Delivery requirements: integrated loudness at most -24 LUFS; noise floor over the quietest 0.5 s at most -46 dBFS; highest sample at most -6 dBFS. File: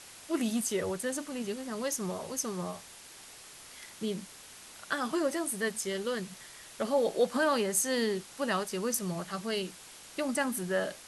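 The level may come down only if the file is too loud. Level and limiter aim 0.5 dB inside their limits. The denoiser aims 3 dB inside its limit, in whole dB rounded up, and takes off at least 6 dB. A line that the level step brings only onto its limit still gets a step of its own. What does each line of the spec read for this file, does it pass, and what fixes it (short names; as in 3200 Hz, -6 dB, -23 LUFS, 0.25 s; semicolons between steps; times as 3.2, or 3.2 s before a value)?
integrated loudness -32.5 LUFS: OK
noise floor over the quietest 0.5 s -51 dBFS: OK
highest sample -14.5 dBFS: OK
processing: none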